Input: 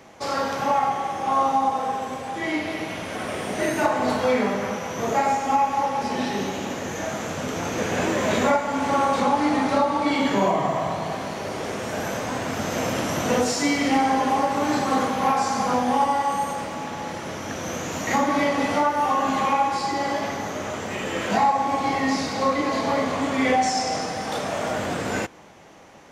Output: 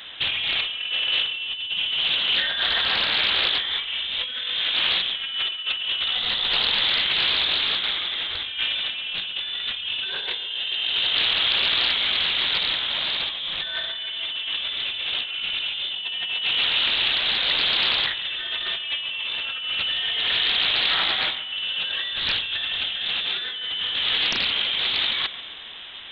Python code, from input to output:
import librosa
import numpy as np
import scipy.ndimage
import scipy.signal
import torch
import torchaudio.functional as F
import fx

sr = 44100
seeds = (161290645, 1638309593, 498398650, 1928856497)

y = fx.over_compress(x, sr, threshold_db=-30.0, ratio=-1.0)
y = fx.echo_feedback(y, sr, ms=140, feedback_pct=54, wet_db=-15)
y = fx.freq_invert(y, sr, carrier_hz=3800)
y = fx.doppler_dist(y, sr, depth_ms=0.71)
y = y * 10.0 ** (4.0 / 20.0)